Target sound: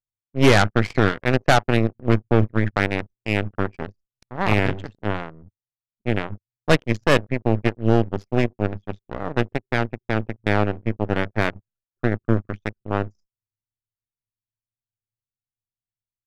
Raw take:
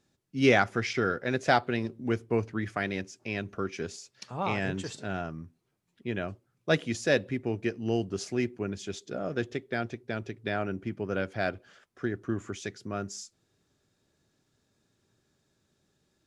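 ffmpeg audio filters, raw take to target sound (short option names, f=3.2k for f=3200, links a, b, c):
-filter_complex "[0:a]aeval=exprs='if(lt(val(0),0),0.708*val(0),val(0))':c=same,equalizer=f=100:w=3:g=14,asplit=2[a][b];[b]acrusher=bits=6:mix=0:aa=0.000001,volume=-3.5dB[c];[a][c]amix=inputs=2:normalize=0,adynamicsmooth=sensitivity=5:basefreq=3.6k,anlmdn=1,acrossover=split=2700[d][e];[d]acontrast=89[f];[f][e]amix=inputs=2:normalize=0,aeval=exprs='0.891*(cos(1*acos(clip(val(0)/0.891,-1,1)))-cos(1*PI/2))+0.1*(cos(6*acos(clip(val(0)/0.891,-1,1)))-cos(6*PI/2))+0.112*(cos(7*acos(clip(val(0)/0.891,-1,1)))-cos(7*PI/2))':c=same,aresample=32000,aresample=44100,volume=-2.5dB"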